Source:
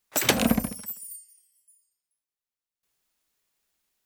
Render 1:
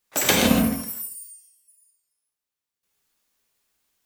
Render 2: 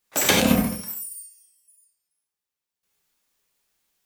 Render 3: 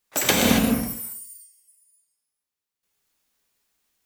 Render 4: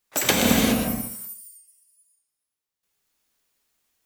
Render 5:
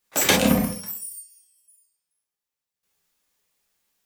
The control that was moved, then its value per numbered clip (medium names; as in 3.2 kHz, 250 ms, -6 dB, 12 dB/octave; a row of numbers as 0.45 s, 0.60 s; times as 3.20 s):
gated-style reverb, gate: 190 ms, 120 ms, 300 ms, 440 ms, 80 ms